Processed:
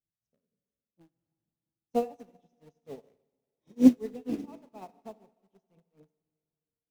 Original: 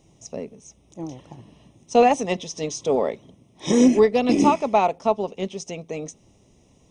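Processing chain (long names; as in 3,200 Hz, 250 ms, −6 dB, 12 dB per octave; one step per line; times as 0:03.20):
low-shelf EQ 450 Hz +11 dB
harmonic and percussive parts rebalanced percussive −4 dB
high-shelf EQ 3,800 Hz −6 dB
in parallel at −11 dB: wrap-around overflow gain 19.5 dB
on the sum: shaped tremolo triangle 4.2 Hz, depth 90%
on a send at −6 dB: convolution reverb RT60 2.9 s, pre-delay 34 ms
on the sum: expander for the loud parts 2.5 to 1, over −33 dBFS
level −6.5 dB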